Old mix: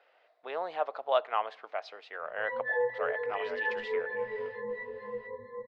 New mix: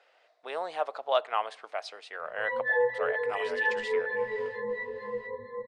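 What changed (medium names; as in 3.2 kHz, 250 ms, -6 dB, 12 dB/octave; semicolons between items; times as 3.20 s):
background +3.0 dB; master: remove distance through air 200 m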